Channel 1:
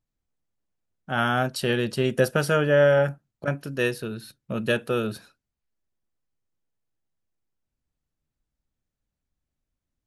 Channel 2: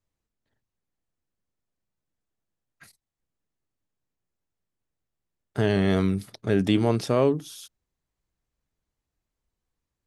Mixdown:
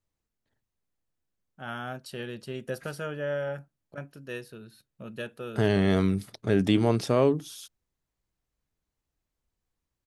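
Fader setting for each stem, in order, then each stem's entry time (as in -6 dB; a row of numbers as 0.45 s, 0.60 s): -13.0 dB, -1.0 dB; 0.50 s, 0.00 s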